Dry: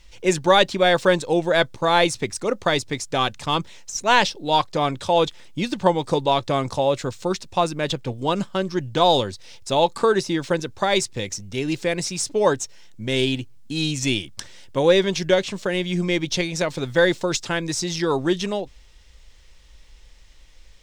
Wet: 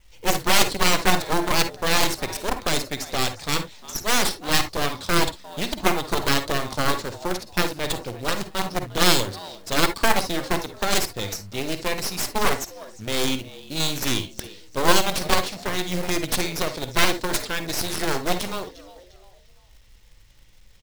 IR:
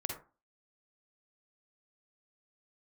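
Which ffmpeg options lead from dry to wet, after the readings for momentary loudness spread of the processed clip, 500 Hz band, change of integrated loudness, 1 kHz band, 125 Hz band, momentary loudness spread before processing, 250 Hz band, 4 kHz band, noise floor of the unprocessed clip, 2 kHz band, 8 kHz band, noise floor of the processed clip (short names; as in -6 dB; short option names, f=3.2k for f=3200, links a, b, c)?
10 LU, -7.0 dB, -2.0 dB, -3.0 dB, -3.0 dB, 10 LU, -3.5 dB, +0.5 dB, -48 dBFS, 0.0 dB, +3.5 dB, -51 dBFS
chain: -filter_complex "[0:a]adynamicequalizer=threshold=0.00708:dfrequency=4500:dqfactor=2.4:tfrequency=4500:tqfactor=2.4:attack=5:release=100:ratio=0.375:range=4:mode=boostabove:tftype=bell,acrusher=bits=3:mode=log:mix=0:aa=0.000001,asplit=4[a][b][c][d];[b]adelay=352,afreqshift=89,volume=-17.5dB[e];[c]adelay=704,afreqshift=178,volume=-26.6dB[f];[d]adelay=1056,afreqshift=267,volume=-35.7dB[g];[a][e][f][g]amix=inputs=4:normalize=0,aeval=exprs='0.841*(cos(1*acos(clip(val(0)/0.841,-1,1)))-cos(1*PI/2))+0.376*(cos(6*acos(clip(val(0)/0.841,-1,1)))-cos(6*PI/2))+0.266*(cos(7*acos(clip(val(0)/0.841,-1,1)))-cos(7*PI/2))':c=same,asplit=2[h][i];[1:a]atrim=start_sample=2205,atrim=end_sample=3528[j];[i][j]afir=irnorm=-1:irlink=0,volume=-0.5dB[k];[h][k]amix=inputs=2:normalize=0,volume=-11.5dB"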